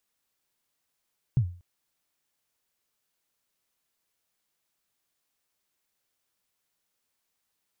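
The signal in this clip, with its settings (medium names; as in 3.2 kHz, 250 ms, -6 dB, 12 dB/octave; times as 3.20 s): kick drum length 0.24 s, from 140 Hz, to 88 Hz, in 81 ms, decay 0.39 s, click off, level -15.5 dB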